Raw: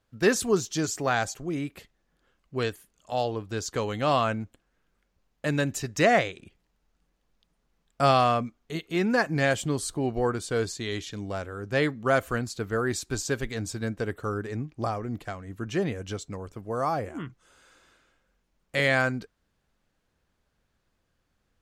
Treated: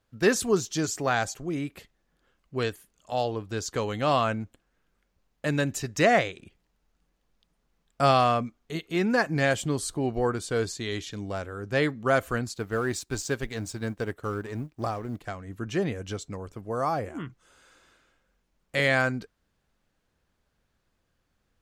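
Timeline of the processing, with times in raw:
12.54–15.24 G.711 law mismatch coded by A

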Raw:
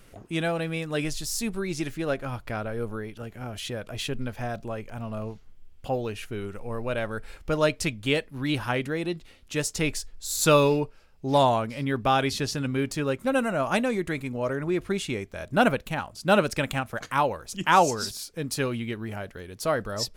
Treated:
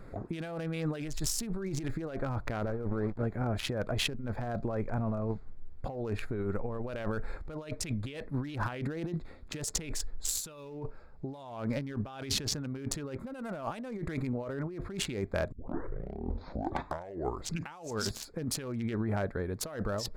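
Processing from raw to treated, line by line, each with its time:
2.59–3.23 backlash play -35.5 dBFS
15.52 tape start 2.37 s
whole clip: Wiener smoothing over 15 samples; negative-ratio compressor -36 dBFS, ratio -1

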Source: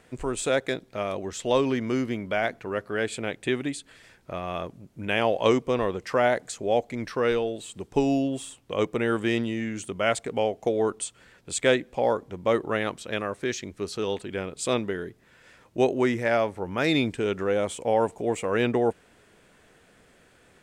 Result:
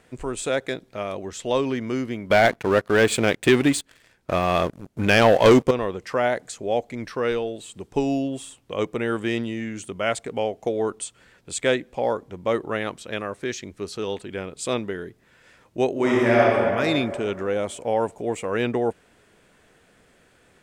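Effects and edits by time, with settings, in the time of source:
2.3–5.71 sample leveller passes 3
15.91–16.55 reverb throw, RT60 2.3 s, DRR -5.5 dB

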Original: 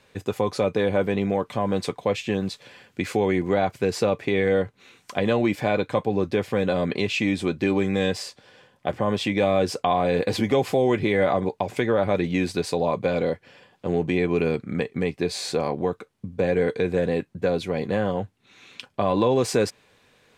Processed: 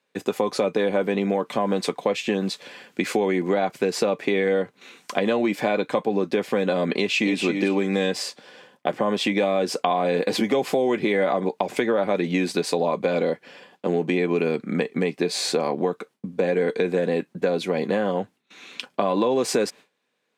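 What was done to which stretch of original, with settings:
6.93–7.4 echo throw 0.28 s, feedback 20%, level -6.5 dB
whole clip: gate with hold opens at -45 dBFS; HPF 180 Hz 24 dB/oct; compressor 3:1, threshold -25 dBFS; gain +5.5 dB

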